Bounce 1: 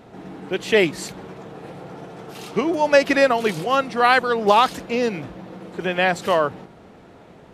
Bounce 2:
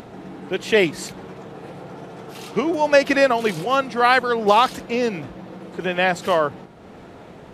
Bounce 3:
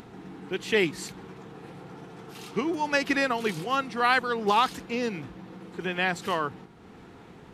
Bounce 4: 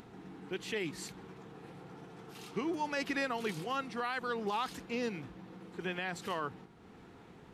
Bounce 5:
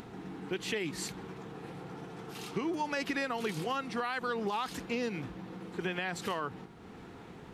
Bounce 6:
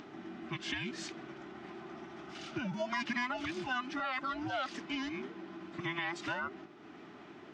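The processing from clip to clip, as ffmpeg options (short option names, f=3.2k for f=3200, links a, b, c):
-af "acompressor=mode=upward:threshold=-34dB:ratio=2.5"
-af "equalizer=f=600:t=o:w=0.36:g=-13,volume=-5.5dB"
-af "alimiter=limit=-19dB:level=0:latency=1:release=49,volume=-6.5dB"
-af "acompressor=threshold=-36dB:ratio=6,volume=6dB"
-af "afftfilt=real='real(if(between(b,1,1008),(2*floor((b-1)/24)+1)*24-b,b),0)':imag='imag(if(between(b,1,1008),(2*floor((b-1)/24)+1)*24-b,b),0)*if(between(b,1,1008),-1,1)':win_size=2048:overlap=0.75,highpass=220,equalizer=f=490:t=q:w=4:g=-7,equalizer=f=860:t=q:w=4:g=-3,equalizer=f=4.2k:t=q:w=4:g=-5,lowpass=f=5.9k:w=0.5412,lowpass=f=5.9k:w=1.3066"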